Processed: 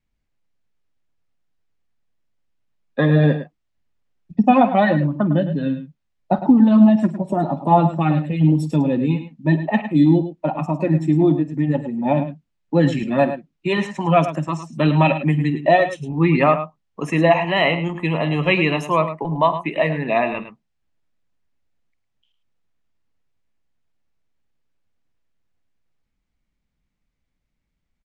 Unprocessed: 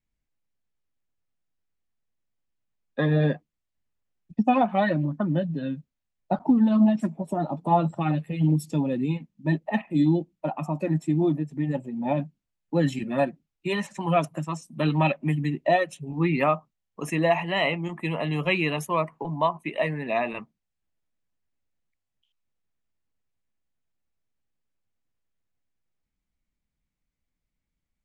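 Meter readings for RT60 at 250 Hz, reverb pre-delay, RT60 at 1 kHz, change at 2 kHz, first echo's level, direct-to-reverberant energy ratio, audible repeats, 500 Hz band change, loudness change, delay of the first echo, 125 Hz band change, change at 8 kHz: no reverb, no reverb, no reverb, +6.5 dB, -17.5 dB, no reverb, 2, +7.0 dB, +7.0 dB, 49 ms, +7.0 dB, no reading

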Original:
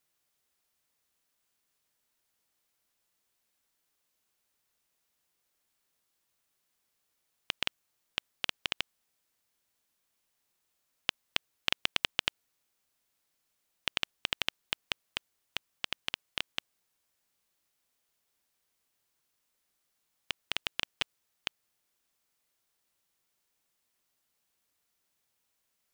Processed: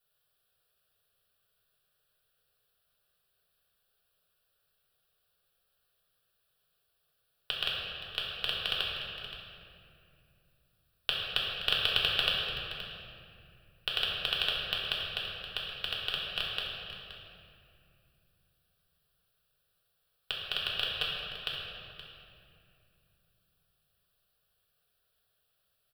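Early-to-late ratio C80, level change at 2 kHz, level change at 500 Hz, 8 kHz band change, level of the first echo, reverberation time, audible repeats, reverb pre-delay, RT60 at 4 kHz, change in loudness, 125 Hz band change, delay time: 0.5 dB, +2.0 dB, +5.5 dB, -7.5 dB, -12.0 dB, 2.6 s, 1, 3 ms, 1.9 s, +3.5 dB, +7.5 dB, 523 ms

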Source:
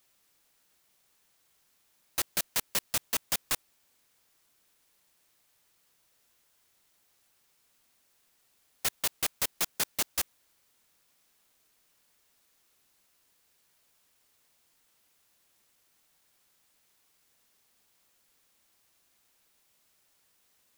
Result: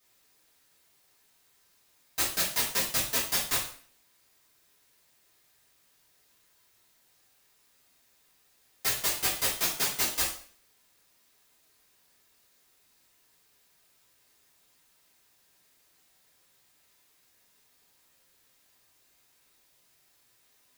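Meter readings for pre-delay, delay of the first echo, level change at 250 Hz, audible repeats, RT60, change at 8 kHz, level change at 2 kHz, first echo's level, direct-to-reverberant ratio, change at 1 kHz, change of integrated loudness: 3 ms, no echo, +4.0 dB, no echo, 0.50 s, +3.0 dB, +4.0 dB, no echo, -9.0 dB, +3.5 dB, +3.5 dB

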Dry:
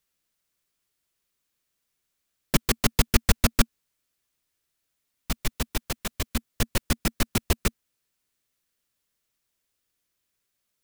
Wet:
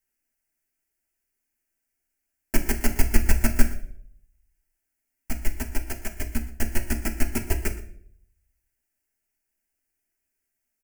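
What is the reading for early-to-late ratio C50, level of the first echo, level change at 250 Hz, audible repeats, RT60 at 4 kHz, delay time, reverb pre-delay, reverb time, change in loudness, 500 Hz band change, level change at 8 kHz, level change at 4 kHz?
11.0 dB, -18.0 dB, -0.5 dB, 1, 0.45 s, 119 ms, 3 ms, 0.60 s, -1.5 dB, -2.0 dB, -2.5 dB, -10.0 dB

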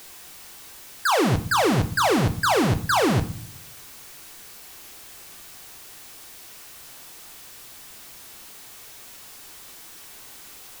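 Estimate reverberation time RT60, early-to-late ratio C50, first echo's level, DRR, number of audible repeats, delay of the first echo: 0.50 s, 14.5 dB, no echo, 7.0 dB, no echo, no echo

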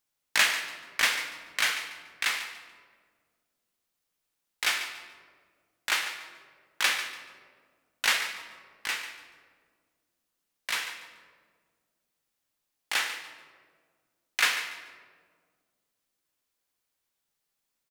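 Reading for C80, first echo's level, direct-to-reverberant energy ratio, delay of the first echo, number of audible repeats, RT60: 9.0 dB, -12.5 dB, 6.5 dB, 144 ms, 2, 1.8 s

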